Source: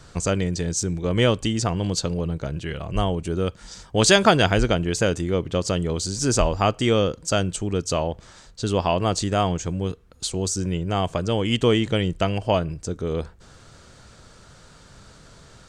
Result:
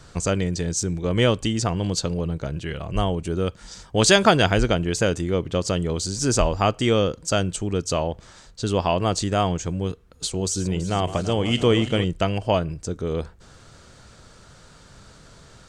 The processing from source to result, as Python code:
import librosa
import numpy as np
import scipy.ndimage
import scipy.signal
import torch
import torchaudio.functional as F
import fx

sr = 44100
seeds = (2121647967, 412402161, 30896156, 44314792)

y = fx.reverse_delay_fb(x, sr, ms=165, feedback_pct=75, wet_db=-13, at=(9.91, 12.04))